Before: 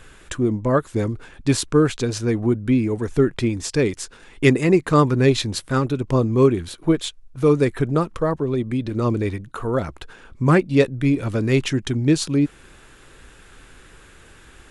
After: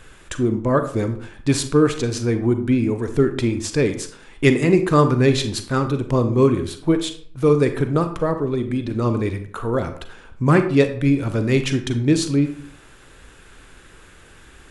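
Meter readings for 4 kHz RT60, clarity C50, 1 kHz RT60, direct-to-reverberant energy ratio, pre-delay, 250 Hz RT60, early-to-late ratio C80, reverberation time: 0.35 s, 10.5 dB, 0.50 s, 8.0 dB, 33 ms, 0.55 s, 13.5 dB, 0.50 s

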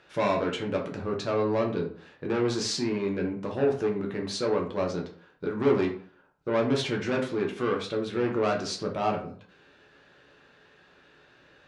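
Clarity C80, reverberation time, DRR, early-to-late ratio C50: 13.0 dB, 0.50 s, -0.5 dB, 8.5 dB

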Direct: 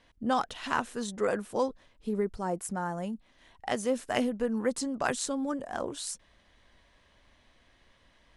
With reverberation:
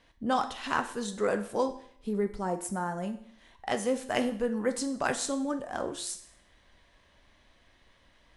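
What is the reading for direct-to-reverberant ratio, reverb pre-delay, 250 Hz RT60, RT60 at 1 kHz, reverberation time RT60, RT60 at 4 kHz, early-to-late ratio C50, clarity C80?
7.0 dB, 9 ms, 0.60 s, 0.60 s, 0.60 s, 0.60 s, 12.0 dB, 15.0 dB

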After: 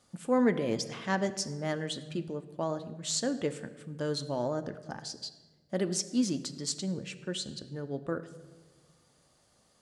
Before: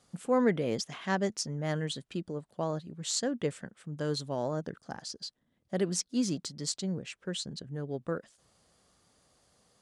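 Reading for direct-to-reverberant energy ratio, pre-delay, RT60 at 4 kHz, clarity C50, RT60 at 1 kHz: 9.0 dB, 3 ms, 0.90 s, 13.5 dB, 1.1 s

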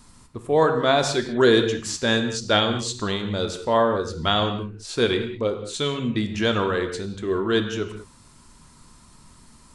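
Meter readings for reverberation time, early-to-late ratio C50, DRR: not exponential, 8.0 dB, 5.5 dB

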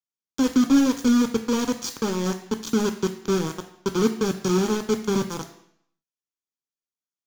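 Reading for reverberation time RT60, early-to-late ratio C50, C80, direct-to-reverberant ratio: 0.70 s, 11.0 dB, 13.5 dB, 6.5 dB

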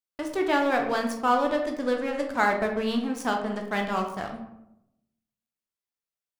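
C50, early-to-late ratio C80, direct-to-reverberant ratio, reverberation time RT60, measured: 6.5 dB, 9.5 dB, 2.5 dB, 0.80 s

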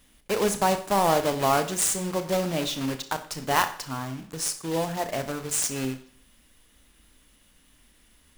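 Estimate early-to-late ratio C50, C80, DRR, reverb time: 12.0 dB, 16.0 dB, 8.5 dB, 0.50 s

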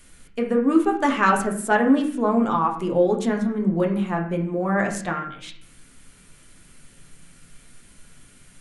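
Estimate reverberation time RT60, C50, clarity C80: 0.60 s, 8.0 dB, 11.5 dB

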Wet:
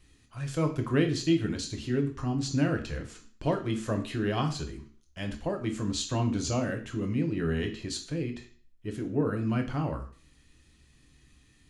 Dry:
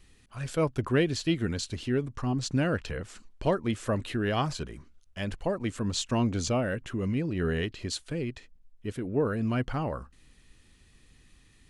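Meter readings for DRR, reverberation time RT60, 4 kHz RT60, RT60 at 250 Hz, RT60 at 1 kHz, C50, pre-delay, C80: 4.0 dB, 0.45 s, 0.45 s, 0.40 s, 0.45 s, 12.0 dB, 3 ms, 15.0 dB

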